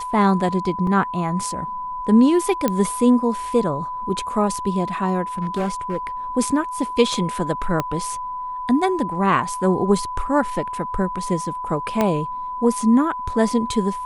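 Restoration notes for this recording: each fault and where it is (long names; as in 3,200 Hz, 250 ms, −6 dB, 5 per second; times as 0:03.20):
whistle 1,000 Hz −26 dBFS
0:00.87: drop-out 3 ms
0:02.68: click −6 dBFS
0:05.38–0:05.97: clipping −18.5 dBFS
0:07.80: click −8 dBFS
0:12.01: click −6 dBFS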